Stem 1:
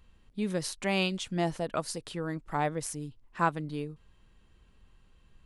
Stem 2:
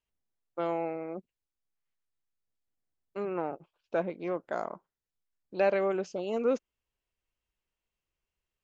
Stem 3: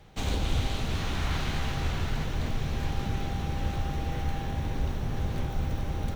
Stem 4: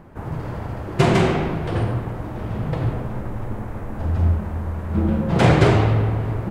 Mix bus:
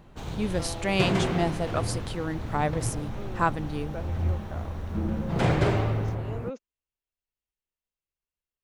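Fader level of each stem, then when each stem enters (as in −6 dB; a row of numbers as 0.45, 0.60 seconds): +2.5, −9.0, −9.5, −9.0 decibels; 0.00, 0.00, 0.00, 0.00 seconds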